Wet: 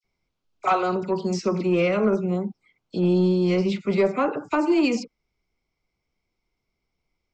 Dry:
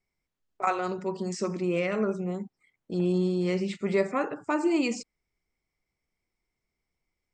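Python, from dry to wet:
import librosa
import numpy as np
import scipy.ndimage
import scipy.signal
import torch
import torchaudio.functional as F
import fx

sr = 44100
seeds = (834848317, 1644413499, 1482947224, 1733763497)

p1 = fx.peak_eq(x, sr, hz=1800.0, db=-12.5, octaves=0.21)
p2 = fx.dispersion(p1, sr, late='lows', ms=44.0, hz=2200.0)
p3 = fx.rider(p2, sr, range_db=10, speed_s=2.0)
p4 = p2 + (p3 * 10.0 ** (-1.5 / 20.0))
p5 = scipy.signal.sosfilt(scipy.signal.butter(4, 6000.0, 'lowpass', fs=sr, output='sos'), p4)
p6 = 10.0 ** (-12.0 / 20.0) * np.tanh(p5 / 10.0 ** (-12.0 / 20.0))
y = p6 * 10.0 ** (1.5 / 20.0)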